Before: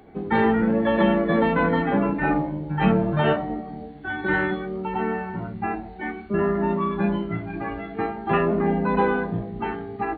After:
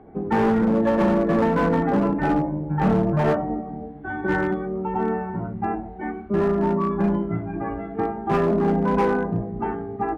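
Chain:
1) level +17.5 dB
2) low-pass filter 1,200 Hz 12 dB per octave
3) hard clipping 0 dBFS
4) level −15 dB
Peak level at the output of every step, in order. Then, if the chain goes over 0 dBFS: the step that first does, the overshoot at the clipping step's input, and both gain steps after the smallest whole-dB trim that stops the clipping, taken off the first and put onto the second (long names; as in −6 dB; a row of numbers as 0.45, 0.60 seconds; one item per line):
+10.0, +9.5, 0.0, −15.0 dBFS
step 1, 9.5 dB
step 1 +7.5 dB, step 4 −5 dB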